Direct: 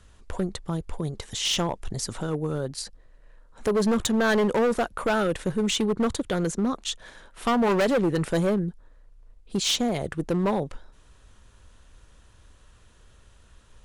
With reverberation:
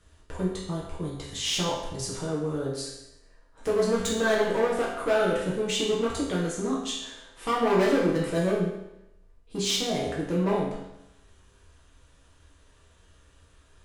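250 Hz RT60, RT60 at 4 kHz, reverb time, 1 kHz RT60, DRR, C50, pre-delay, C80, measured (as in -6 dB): 0.85 s, 0.85 s, 0.85 s, 0.85 s, -6.0 dB, 2.5 dB, 4 ms, 5.0 dB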